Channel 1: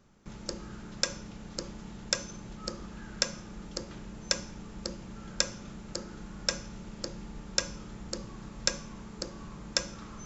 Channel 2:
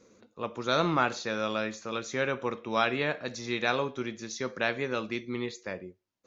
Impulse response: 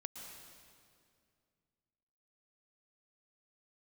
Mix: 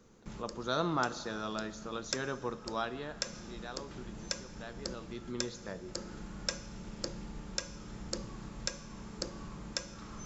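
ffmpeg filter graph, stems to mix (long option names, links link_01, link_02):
-filter_complex "[0:a]volume=-1.5dB,asplit=2[link_01][link_02];[link_02]volume=-16.5dB[link_03];[1:a]equalizer=frequency=2300:width=3.3:gain=-14.5,bandreject=frequency=540:width=14,volume=5dB,afade=type=out:start_time=2.5:duration=0.73:silence=0.298538,afade=type=in:start_time=4.93:duration=0.56:silence=0.266073,asplit=3[link_04][link_05][link_06];[link_05]volume=-8.5dB[link_07];[link_06]apad=whole_len=452338[link_08];[link_01][link_08]sidechaincompress=threshold=-44dB:ratio=8:attack=9.3:release=484[link_09];[2:a]atrim=start_sample=2205[link_10];[link_03][link_07]amix=inputs=2:normalize=0[link_11];[link_11][link_10]afir=irnorm=-1:irlink=0[link_12];[link_09][link_04][link_12]amix=inputs=3:normalize=0,alimiter=limit=-13.5dB:level=0:latency=1:release=385"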